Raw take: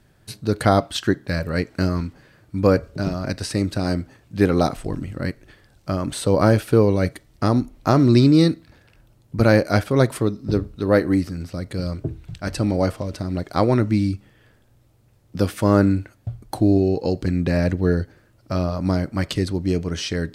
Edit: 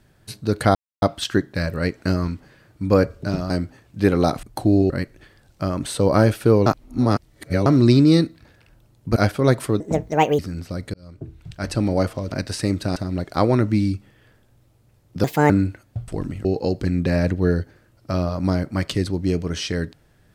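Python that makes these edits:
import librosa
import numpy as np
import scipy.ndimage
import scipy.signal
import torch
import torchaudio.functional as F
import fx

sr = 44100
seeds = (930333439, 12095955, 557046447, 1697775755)

y = fx.edit(x, sr, fx.insert_silence(at_s=0.75, length_s=0.27),
    fx.move(start_s=3.23, length_s=0.64, to_s=13.15),
    fx.swap(start_s=4.8, length_s=0.37, other_s=16.39, other_length_s=0.47),
    fx.reverse_span(start_s=6.93, length_s=1.0),
    fx.cut(start_s=9.43, length_s=0.25),
    fx.speed_span(start_s=10.32, length_s=0.9, speed=1.53),
    fx.fade_in_span(start_s=11.77, length_s=0.74),
    fx.speed_span(start_s=15.43, length_s=0.38, speed=1.46), tone=tone)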